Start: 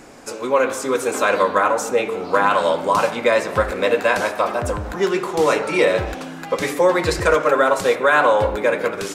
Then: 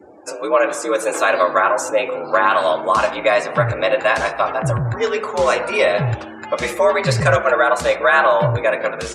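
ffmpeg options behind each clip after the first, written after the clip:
-af "afreqshift=60,asubboost=boost=11.5:cutoff=79,afftdn=nr=30:nf=-40,volume=1.26"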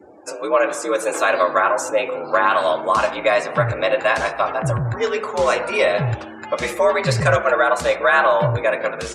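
-af "aeval=exprs='0.891*(cos(1*acos(clip(val(0)/0.891,-1,1)))-cos(1*PI/2))+0.00501*(cos(4*acos(clip(val(0)/0.891,-1,1)))-cos(4*PI/2))':c=same,volume=0.841"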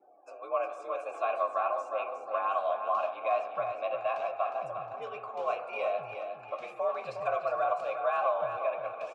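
-filter_complex "[0:a]asplit=3[s0][s1][s2];[s0]bandpass=f=730:t=q:w=8,volume=1[s3];[s1]bandpass=f=1090:t=q:w=8,volume=0.501[s4];[s2]bandpass=f=2440:t=q:w=8,volume=0.355[s5];[s3][s4][s5]amix=inputs=3:normalize=0,asplit=2[s6][s7];[s7]aecho=0:1:359|718|1077|1436:0.422|0.16|0.0609|0.0231[s8];[s6][s8]amix=inputs=2:normalize=0,volume=0.531"

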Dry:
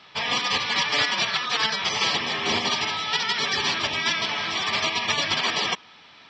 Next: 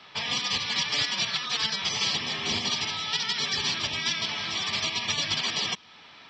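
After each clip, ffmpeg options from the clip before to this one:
-filter_complex "[0:a]acrossover=split=220|3000[s0][s1][s2];[s1]acompressor=threshold=0.0112:ratio=2.5[s3];[s0][s3][s2]amix=inputs=3:normalize=0"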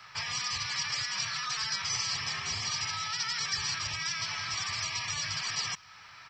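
-af "firequalizer=gain_entry='entry(120,0);entry(220,-19);entry(1300,0);entry(6600,-24)':delay=0.05:min_phase=1,alimiter=level_in=2.51:limit=0.0631:level=0:latency=1:release=23,volume=0.398,aexciter=amount=15.4:drive=7.6:freq=5400,volume=1.58"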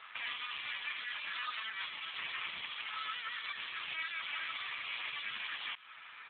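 -af "alimiter=level_in=1.78:limit=0.0631:level=0:latency=1:release=104,volume=0.562,aemphasis=mode=production:type=riaa,volume=1.12" -ar 8000 -c:a libopencore_amrnb -b:a 7400

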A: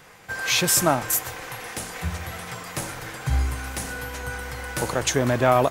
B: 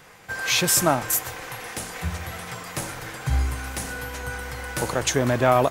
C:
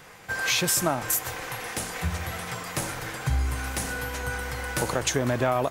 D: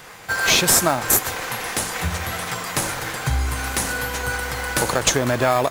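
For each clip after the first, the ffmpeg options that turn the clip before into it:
-af anull
-af "acompressor=threshold=0.0708:ratio=3,volume=1.12"
-filter_complex "[0:a]tiltshelf=f=760:g=-4,asplit=2[s0][s1];[s1]acrusher=samples=15:mix=1:aa=0.000001,volume=0.422[s2];[s0][s2]amix=inputs=2:normalize=0,volume=1.58"

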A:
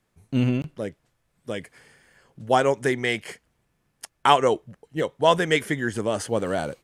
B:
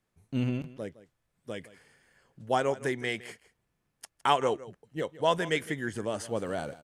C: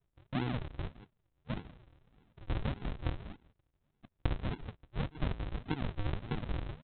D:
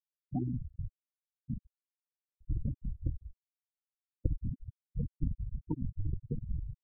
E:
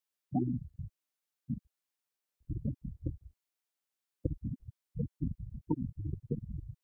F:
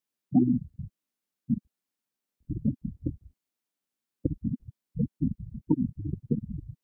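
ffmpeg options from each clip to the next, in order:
-af "aecho=1:1:162:0.133,volume=0.422"
-af "acompressor=threshold=0.0282:ratio=12,aresample=8000,acrusher=samples=26:mix=1:aa=0.000001:lfo=1:lforange=26:lforate=1.7,aresample=44100,volume=1.12"
-af "aeval=exprs='val(0)+0.00251*(sin(2*PI*60*n/s)+sin(2*PI*2*60*n/s)/2+sin(2*PI*3*60*n/s)/3+sin(2*PI*4*60*n/s)/4+sin(2*PI*5*60*n/s)/5)':c=same,afftfilt=real='re*gte(hypot(re,im),0.0708)':imag='im*gte(hypot(re,im),0.0708)':win_size=1024:overlap=0.75,volume=1.19"
-af "highpass=f=250:p=1,volume=2.11"
-af "equalizer=f=230:w=1.1:g=12"

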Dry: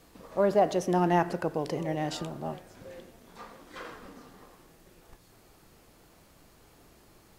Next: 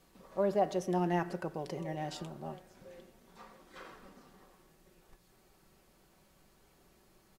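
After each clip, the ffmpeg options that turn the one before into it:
-af "aecho=1:1:5.3:0.42,volume=0.398"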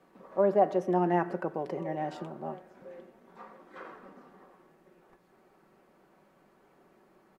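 -filter_complex "[0:a]acrossover=split=170 2100:gain=0.1 1 0.141[s0][s1][s2];[s0][s1][s2]amix=inputs=3:normalize=0,volume=2"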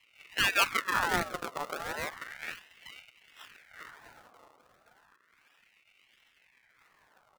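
-af "acrusher=samples=40:mix=1:aa=0.000001:lfo=1:lforange=40:lforate=1.4,aeval=exprs='val(0)*sin(2*PI*1700*n/s+1700*0.5/0.33*sin(2*PI*0.33*n/s))':c=same"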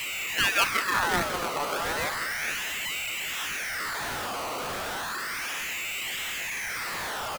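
-filter_complex "[0:a]aeval=exprs='val(0)+0.5*0.0447*sgn(val(0))':c=same,asplit=2[s0][s1];[s1]adelay=192.4,volume=0.224,highshelf=f=4000:g=-4.33[s2];[s0][s2]amix=inputs=2:normalize=0"

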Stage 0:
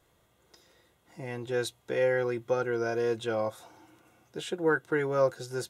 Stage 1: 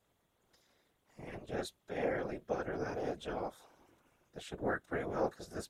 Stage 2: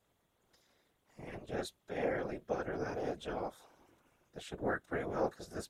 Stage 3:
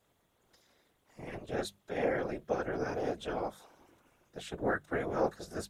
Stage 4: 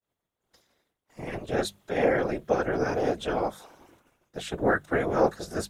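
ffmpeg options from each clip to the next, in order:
-af "tremolo=f=230:d=0.974,afftfilt=real='hypot(re,im)*cos(2*PI*random(0))':imag='hypot(re,im)*sin(2*PI*random(1))':win_size=512:overlap=0.75,volume=1.12"
-af anull
-af "bandreject=f=50:t=h:w=6,bandreject=f=100:t=h:w=6,bandreject=f=150:t=h:w=6,bandreject=f=200:t=h:w=6,volume=1.5"
-af "agate=range=0.0224:threshold=0.001:ratio=3:detection=peak,volume=2.51"

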